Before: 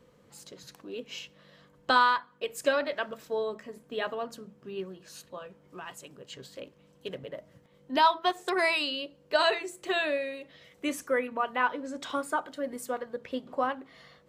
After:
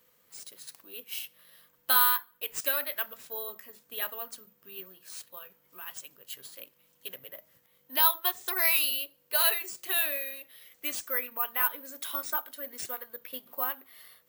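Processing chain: tilt shelf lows -9 dB, about 830 Hz; careless resampling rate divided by 3×, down none, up zero stuff; trim -8 dB

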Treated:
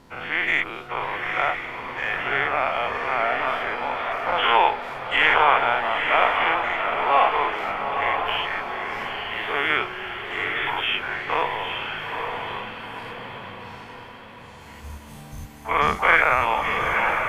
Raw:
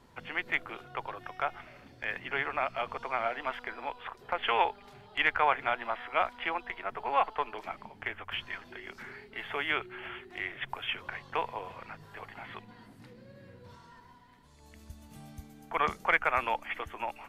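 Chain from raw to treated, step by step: every event in the spectrogram widened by 120 ms; echo that smears into a reverb 903 ms, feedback 45%, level -5 dB; trim +3.5 dB

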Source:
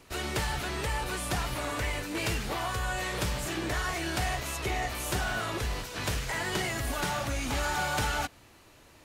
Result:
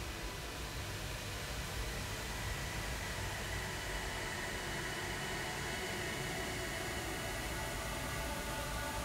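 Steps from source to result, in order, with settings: Paulstretch 7.6×, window 1.00 s, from 5.82 s; de-hum 61.87 Hz, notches 31; trim -8 dB

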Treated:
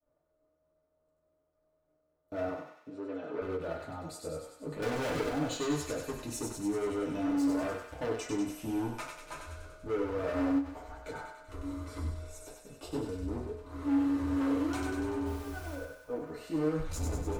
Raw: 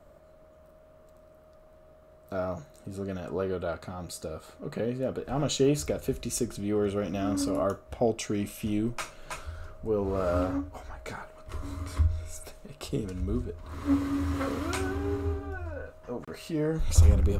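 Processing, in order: expander -42 dBFS; peaking EQ 400 Hz +5.5 dB 2.3 oct; 4.82–5.29 s: waveshaping leveller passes 5; flange 0.33 Hz, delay 7.5 ms, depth 7.7 ms, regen -57%; hard clipper -29 dBFS, distortion -6 dB; 2.49–3.42 s: band-pass 230–3500 Hz; 15.25–15.74 s: added noise pink -48 dBFS; thinning echo 96 ms, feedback 67%, high-pass 1.2 kHz, level -3.5 dB; FDN reverb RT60 0.34 s, low-frequency decay 0.85×, high-frequency decay 0.55×, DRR -2 dB; endings held to a fixed fall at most 200 dB/s; trim -6.5 dB

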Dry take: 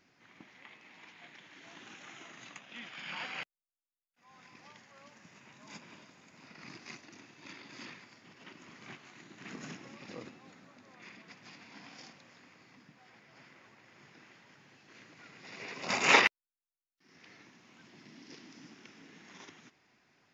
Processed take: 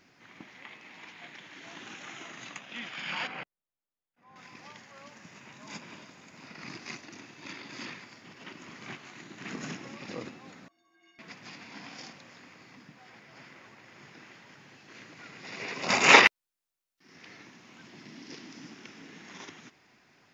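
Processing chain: 3.27–4.36 s: low-pass 1 kHz 6 dB/octave; 10.68–11.19 s: inharmonic resonator 330 Hz, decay 0.49 s, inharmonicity 0.03; trim +6.5 dB

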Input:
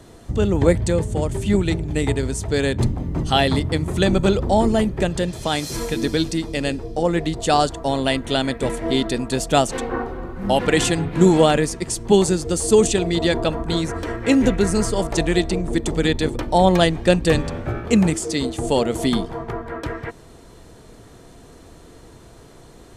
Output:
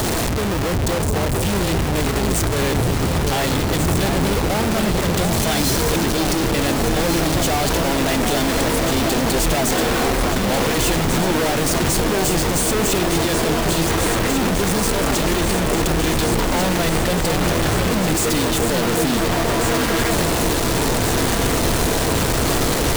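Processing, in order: one-bit comparator; echo whose repeats swap between lows and highs 721 ms, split 970 Hz, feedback 84%, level -5 dB

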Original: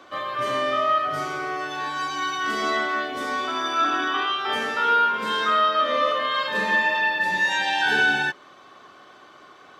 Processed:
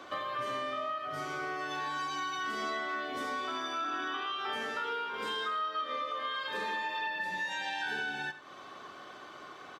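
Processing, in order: 4.84–7.07 s: comb 2.5 ms, depth 52%; compression 6:1, threshold -34 dBFS, peak gain reduction 17.5 dB; delay 88 ms -14 dB

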